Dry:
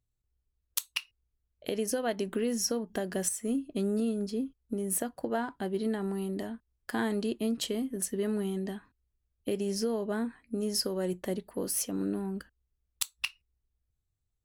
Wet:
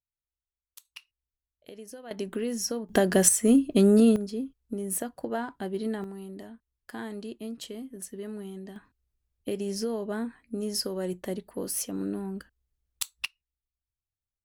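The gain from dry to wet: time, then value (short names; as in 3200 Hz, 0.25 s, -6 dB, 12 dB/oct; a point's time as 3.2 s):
-19 dB
from 0.85 s -13 dB
from 2.11 s -0.5 dB
from 2.89 s +11 dB
from 4.16 s 0 dB
from 6.04 s -7 dB
from 8.76 s 0 dB
from 13.26 s -13 dB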